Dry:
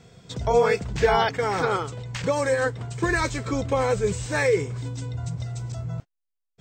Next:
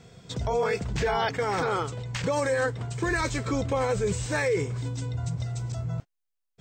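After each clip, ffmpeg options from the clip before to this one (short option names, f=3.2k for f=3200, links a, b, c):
-af "alimiter=limit=-18dB:level=0:latency=1:release=23"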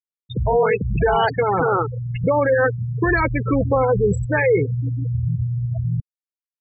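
-af "afftfilt=real='re*gte(hypot(re,im),0.0794)':imag='im*gte(hypot(re,im),0.0794)':win_size=1024:overlap=0.75,volume=9dB"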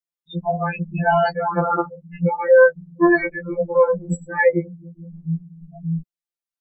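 -af "afftfilt=real='re*2.83*eq(mod(b,8),0)':imag='im*2.83*eq(mod(b,8),0)':win_size=2048:overlap=0.75,volume=1.5dB"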